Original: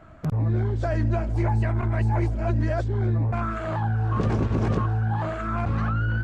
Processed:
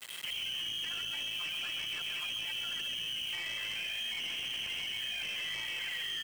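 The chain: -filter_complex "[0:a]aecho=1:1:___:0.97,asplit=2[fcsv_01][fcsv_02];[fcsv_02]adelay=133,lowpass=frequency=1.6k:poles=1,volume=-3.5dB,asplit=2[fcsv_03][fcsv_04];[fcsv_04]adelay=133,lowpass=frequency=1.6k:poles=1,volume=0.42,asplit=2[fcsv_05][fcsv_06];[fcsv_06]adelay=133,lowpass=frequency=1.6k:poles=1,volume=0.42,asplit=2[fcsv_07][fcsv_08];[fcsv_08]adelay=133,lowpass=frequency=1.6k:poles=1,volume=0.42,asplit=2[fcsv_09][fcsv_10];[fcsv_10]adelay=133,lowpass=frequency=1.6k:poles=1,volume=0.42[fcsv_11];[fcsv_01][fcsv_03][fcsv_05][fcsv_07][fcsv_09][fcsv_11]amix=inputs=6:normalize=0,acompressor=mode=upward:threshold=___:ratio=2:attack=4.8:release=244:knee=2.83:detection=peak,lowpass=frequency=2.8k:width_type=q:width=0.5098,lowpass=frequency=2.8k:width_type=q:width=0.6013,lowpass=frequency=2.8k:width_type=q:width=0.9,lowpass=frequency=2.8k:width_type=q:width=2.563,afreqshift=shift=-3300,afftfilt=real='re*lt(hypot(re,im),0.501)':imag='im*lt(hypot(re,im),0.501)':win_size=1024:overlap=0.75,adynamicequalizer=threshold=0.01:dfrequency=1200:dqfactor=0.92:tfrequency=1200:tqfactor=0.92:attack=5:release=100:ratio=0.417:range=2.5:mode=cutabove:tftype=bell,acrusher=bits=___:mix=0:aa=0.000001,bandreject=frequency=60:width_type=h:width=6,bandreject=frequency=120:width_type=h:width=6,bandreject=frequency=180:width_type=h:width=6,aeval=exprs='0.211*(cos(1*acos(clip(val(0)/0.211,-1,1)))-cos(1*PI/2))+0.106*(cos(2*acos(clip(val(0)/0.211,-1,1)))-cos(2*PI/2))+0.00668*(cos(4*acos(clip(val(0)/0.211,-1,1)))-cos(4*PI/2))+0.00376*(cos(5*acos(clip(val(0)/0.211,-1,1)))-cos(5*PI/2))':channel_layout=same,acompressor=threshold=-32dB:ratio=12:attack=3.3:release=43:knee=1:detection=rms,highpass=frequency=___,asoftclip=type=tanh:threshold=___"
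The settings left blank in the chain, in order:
5.8, -44dB, 6, 84, -29.5dB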